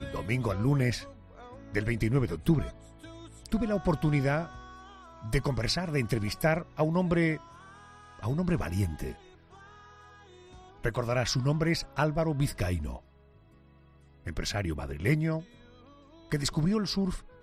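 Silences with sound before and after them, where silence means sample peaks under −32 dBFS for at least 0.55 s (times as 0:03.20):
0:01.00–0:01.74
0:02.70–0:03.46
0:04.46–0:05.25
0:07.37–0:08.23
0:09.12–0:10.84
0:12.96–0:14.27
0:15.39–0:16.32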